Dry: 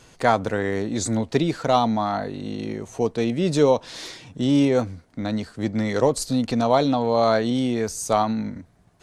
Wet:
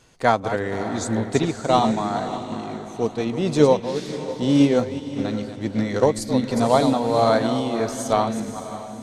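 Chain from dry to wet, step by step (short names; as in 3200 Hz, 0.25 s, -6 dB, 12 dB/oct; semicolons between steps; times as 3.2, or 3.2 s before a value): reverse delay 0.2 s, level -8 dB; diffused feedback echo 0.566 s, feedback 42%, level -8 dB; upward expander 1.5:1, over -28 dBFS; gain +2.5 dB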